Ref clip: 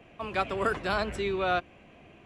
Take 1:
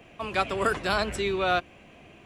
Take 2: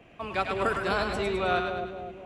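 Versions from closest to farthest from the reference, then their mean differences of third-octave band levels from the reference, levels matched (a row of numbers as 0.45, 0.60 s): 1, 2; 1.5, 4.5 dB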